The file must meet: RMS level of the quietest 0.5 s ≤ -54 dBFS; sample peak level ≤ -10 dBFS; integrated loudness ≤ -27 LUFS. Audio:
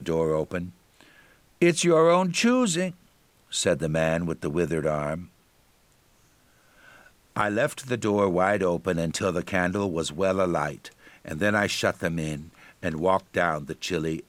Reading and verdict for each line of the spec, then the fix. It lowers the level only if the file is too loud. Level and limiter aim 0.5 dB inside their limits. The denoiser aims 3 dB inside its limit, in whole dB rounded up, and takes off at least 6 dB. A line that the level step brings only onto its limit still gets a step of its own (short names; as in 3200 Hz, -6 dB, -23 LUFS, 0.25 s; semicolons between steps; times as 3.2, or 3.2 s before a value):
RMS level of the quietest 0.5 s -62 dBFS: OK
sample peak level -7.5 dBFS: fail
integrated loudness -25.5 LUFS: fail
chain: gain -2 dB; limiter -10.5 dBFS